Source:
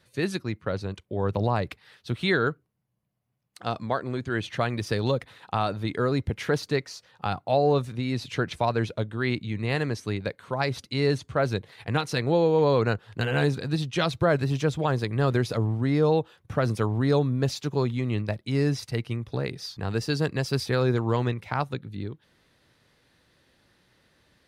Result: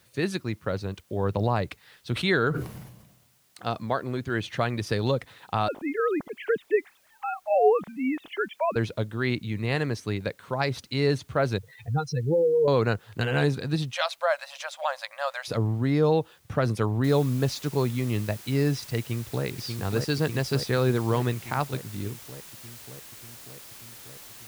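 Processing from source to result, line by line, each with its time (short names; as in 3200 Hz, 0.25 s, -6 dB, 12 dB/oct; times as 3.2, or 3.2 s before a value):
2.13–3.66 sustainer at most 56 dB/s
5.68–8.76 sine-wave speech
11.58–12.68 spectral contrast raised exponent 3
13.93–15.48 brick-wall FIR high-pass 520 Hz
17.04 noise floor step -65 dB -46 dB
18.99–19.45 echo throw 0.59 s, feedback 75%, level -4.5 dB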